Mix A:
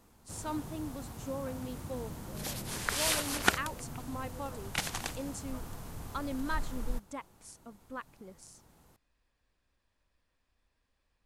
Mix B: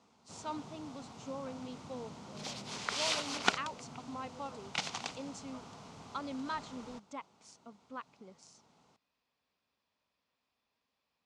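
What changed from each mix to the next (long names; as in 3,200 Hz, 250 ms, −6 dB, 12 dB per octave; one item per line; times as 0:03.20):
master: add loudspeaker in its box 210–6,300 Hz, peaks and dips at 330 Hz −8 dB, 530 Hz −4 dB, 1,700 Hz −9 dB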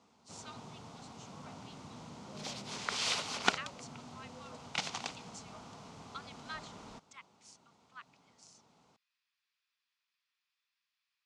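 speech: add high-pass filter 1,400 Hz 24 dB per octave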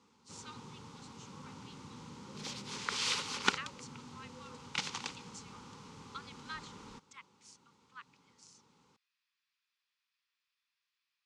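master: add Butterworth band-reject 670 Hz, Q 2.4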